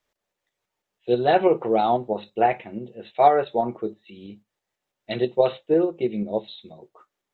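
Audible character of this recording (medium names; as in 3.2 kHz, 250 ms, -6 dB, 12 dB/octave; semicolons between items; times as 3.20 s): tremolo saw up 6.1 Hz, depth 40%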